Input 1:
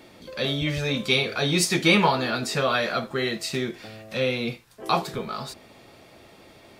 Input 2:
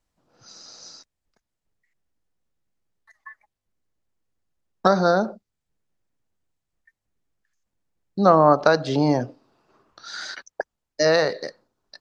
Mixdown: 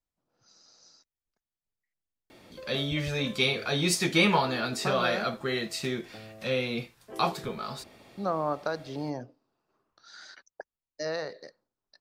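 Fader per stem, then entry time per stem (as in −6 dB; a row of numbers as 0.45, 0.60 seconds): −4.0, −14.5 decibels; 2.30, 0.00 seconds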